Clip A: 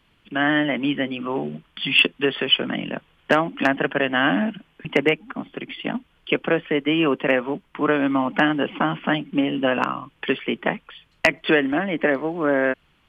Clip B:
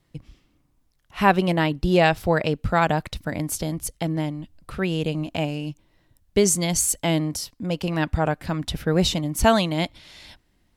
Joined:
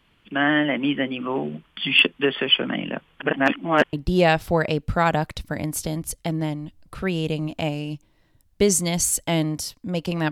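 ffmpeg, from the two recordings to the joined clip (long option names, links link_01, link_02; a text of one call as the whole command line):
ffmpeg -i cue0.wav -i cue1.wav -filter_complex "[0:a]apad=whole_dur=10.31,atrim=end=10.31,asplit=2[link_01][link_02];[link_01]atrim=end=3.202[link_03];[link_02]atrim=start=3.198:end=3.932,asetpts=PTS-STARTPTS,areverse[link_04];[1:a]atrim=start=1.688:end=8.07[link_05];[link_03][link_04]acrossfade=duration=0.004:curve1=hsin:curve2=hsin[link_06];[link_06][link_05]acrossfade=duration=0.004:curve1=hsin:curve2=hsin" out.wav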